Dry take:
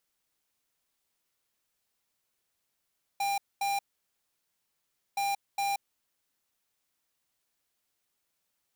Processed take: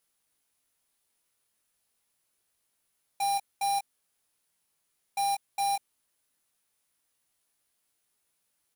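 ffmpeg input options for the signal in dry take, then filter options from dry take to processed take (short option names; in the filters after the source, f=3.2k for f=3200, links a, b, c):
-f lavfi -i "aevalsrc='0.0335*(2*lt(mod(799*t,1),0.5)-1)*clip(min(mod(mod(t,1.97),0.41),0.18-mod(mod(t,1.97),0.41))/0.005,0,1)*lt(mod(t,1.97),0.82)':d=3.94:s=44100"
-filter_complex "[0:a]equalizer=f=10k:w=4.9:g=10,asplit=2[a][b];[b]adelay=19,volume=-5dB[c];[a][c]amix=inputs=2:normalize=0"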